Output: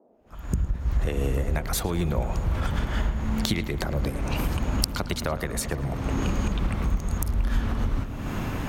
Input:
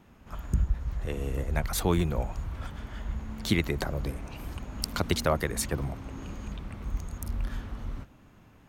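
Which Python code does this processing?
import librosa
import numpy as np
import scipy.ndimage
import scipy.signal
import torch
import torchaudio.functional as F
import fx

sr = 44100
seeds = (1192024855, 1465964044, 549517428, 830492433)

p1 = fx.fade_in_head(x, sr, length_s=2.39)
p2 = fx.recorder_agc(p1, sr, target_db=-13.5, rise_db_per_s=48.0, max_gain_db=30)
p3 = p2 + fx.echo_filtered(p2, sr, ms=110, feedback_pct=85, hz=2900.0, wet_db=-13, dry=0)
p4 = fx.dmg_noise_band(p3, sr, seeds[0], low_hz=200.0, high_hz=730.0, level_db=-57.0)
y = p4 * librosa.db_to_amplitude(-4.0)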